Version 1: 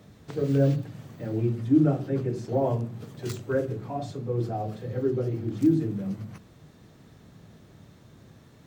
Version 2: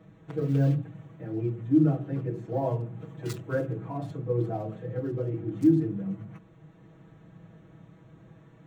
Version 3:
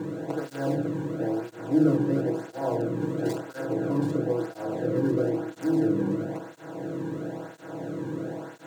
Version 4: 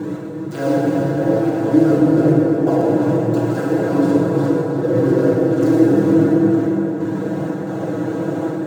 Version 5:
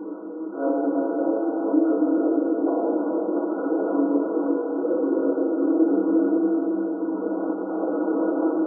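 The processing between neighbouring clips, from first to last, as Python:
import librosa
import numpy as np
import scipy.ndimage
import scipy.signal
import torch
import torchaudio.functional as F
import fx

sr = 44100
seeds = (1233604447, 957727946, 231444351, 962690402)

y1 = fx.wiener(x, sr, points=9)
y1 = y1 + 0.95 * np.pad(y1, (int(6.2 * sr / 1000.0), 0))[:len(y1)]
y1 = fx.rider(y1, sr, range_db=4, speed_s=2.0)
y1 = y1 * librosa.db_to_amplitude(-6.5)
y2 = fx.bin_compress(y1, sr, power=0.4)
y2 = fx.flanger_cancel(y2, sr, hz=0.99, depth_ms=1.6)
y3 = fx.step_gate(y2, sr, bpm=90, pattern='x..xxx.xxxxx.', floor_db=-60.0, edge_ms=4.5)
y3 = y3 + 10.0 ** (-9.0 / 20.0) * np.pad(y3, (int(350 * sr / 1000.0), 0))[:len(y3)]
y3 = fx.rev_plate(y3, sr, seeds[0], rt60_s=4.6, hf_ratio=0.5, predelay_ms=0, drr_db=-5.0)
y3 = y3 * librosa.db_to_amplitude(5.5)
y4 = fx.recorder_agc(y3, sr, target_db=-5.5, rise_db_per_s=5.5, max_gain_db=30)
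y4 = fx.brickwall_bandpass(y4, sr, low_hz=210.0, high_hz=1500.0)
y4 = fx.doubler(y4, sr, ms=25.0, db=-11)
y4 = y4 * librosa.db_to_amplitude(-7.5)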